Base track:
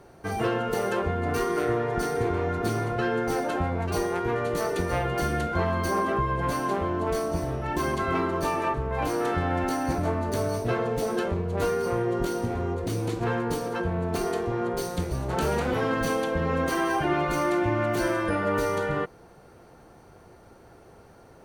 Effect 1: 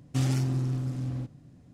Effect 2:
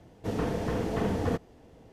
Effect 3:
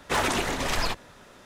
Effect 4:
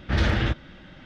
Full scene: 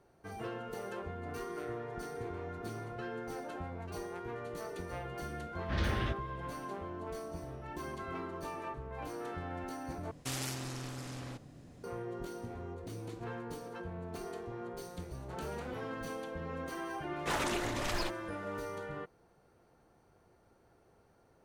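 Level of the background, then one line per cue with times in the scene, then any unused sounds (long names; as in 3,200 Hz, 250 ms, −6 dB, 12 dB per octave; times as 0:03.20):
base track −15 dB
0:05.60: mix in 4 −11 dB
0:10.11: overwrite with 1 −9 dB + every bin compressed towards the loudest bin 2 to 1
0:17.16: mix in 3 −9.5 dB
not used: 2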